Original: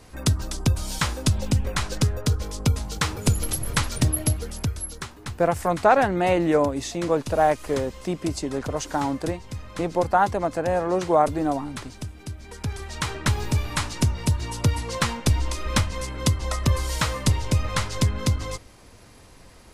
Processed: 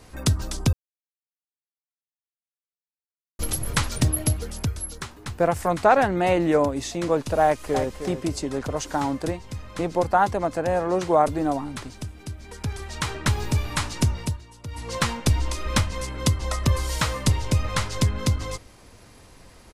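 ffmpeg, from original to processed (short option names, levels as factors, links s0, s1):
-filter_complex "[0:a]asplit=2[s0][s1];[s1]afade=t=in:st=7.43:d=0.01,afade=t=out:st=7.9:d=0.01,aecho=0:1:310|620:0.375837|0.0563756[s2];[s0][s2]amix=inputs=2:normalize=0,asplit=5[s3][s4][s5][s6][s7];[s3]atrim=end=0.73,asetpts=PTS-STARTPTS,afade=t=out:st=0.726:d=0.004:c=hsin[s8];[s4]atrim=start=0.73:end=3.39,asetpts=PTS-STARTPTS,volume=0[s9];[s5]atrim=start=3.39:end=14.43,asetpts=PTS-STARTPTS,afade=t=in:d=0.004:c=hsin,afade=t=out:st=10.75:d=0.29:silence=0.149624[s10];[s6]atrim=start=14.43:end=14.67,asetpts=PTS-STARTPTS,volume=0.15[s11];[s7]atrim=start=14.67,asetpts=PTS-STARTPTS,afade=t=in:d=0.29:silence=0.149624[s12];[s8][s9][s10][s11][s12]concat=n=5:v=0:a=1"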